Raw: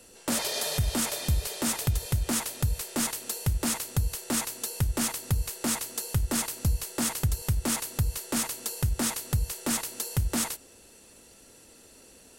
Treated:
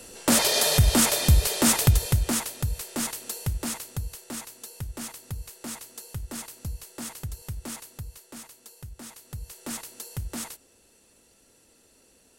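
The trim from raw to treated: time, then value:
1.88 s +8 dB
2.56 s -1 dB
3.40 s -1 dB
4.43 s -8.5 dB
7.66 s -8.5 dB
8.43 s -15 dB
9.08 s -15 dB
9.68 s -6.5 dB

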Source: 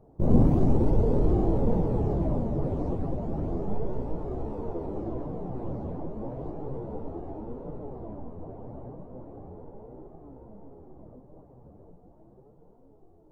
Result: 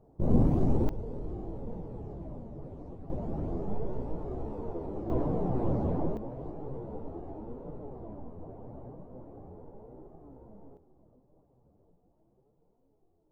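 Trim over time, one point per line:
-4 dB
from 0.89 s -15 dB
from 3.10 s -3.5 dB
from 5.10 s +5 dB
from 6.17 s -4 dB
from 10.77 s -14 dB

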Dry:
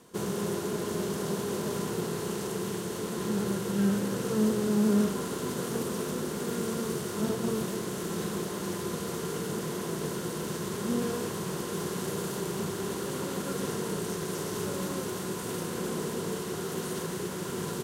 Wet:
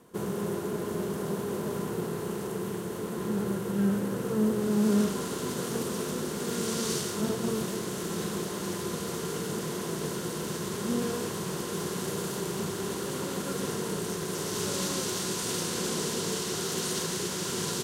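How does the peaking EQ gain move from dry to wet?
peaking EQ 5.2 kHz 2.1 oct
4.49 s -7 dB
4.94 s +2.5 dB
6.38 s +2.5 dB
6.95 s +12.5 dB
7.21 s +2.5 dB
14.30 s +2.5 dB
14.77 s +11 dB

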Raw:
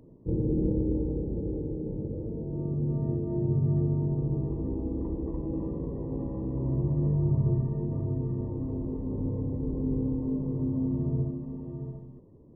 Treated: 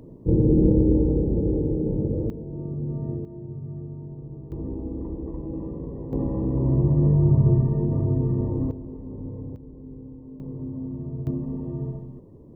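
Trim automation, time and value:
+9 dB
from 2.30 s -0.5 dB
from 3.25 s -9.5 dB
from 4.52 s 0 dB
from 6.13 s +7.5 dB
from 8.71 s -4 dB
from 9.56 s -12 dB
from 10.40 s -4 dB
from 11.27 s +7 dB

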